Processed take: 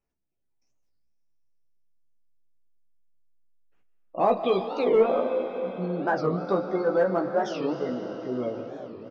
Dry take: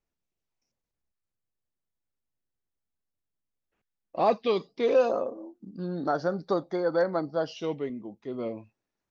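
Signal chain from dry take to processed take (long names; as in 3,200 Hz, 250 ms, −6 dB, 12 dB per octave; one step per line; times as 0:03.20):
gate on every frequency bin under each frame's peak −30 dB strong
in parallel at −8 dB: asymmetric clip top −20 dBFS
on the sum: ambience of single reflections 16 ms −5 dB, 47 ms −14 dB
on a send at −6 dB: convolution reverb RT60 5.6 s, pre-delay 85 ms
on the sum: wow of a warped record 45 rpm, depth 250 cents
level −2 dB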